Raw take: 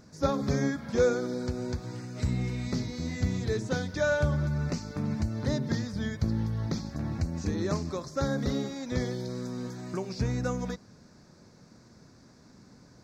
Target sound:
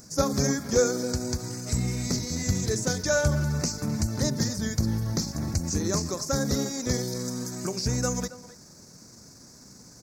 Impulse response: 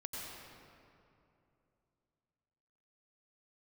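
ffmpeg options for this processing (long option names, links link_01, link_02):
-filter_complex "[0:a]aexciter=amount=6.7:drive=4.7:freq=5100,asplit=2[link_01][link_02];[link_02]adelay=340,highpass=300,lowpass=3400,asoftclip=type=hard:threshold=-21.5dB,volume=-14dB[link_03];[link_01][link_03]amix=inputs=2:normalize=0,atempo=1.3,volume=2.5dB"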